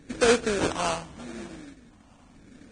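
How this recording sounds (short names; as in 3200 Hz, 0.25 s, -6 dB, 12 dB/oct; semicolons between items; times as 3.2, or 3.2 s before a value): phasing stages 4, 0.82 Hz, lowest notch 380–1500 Hz; aliases and images of a low sample rate 2000 Hz, jitter 20%; Vorbis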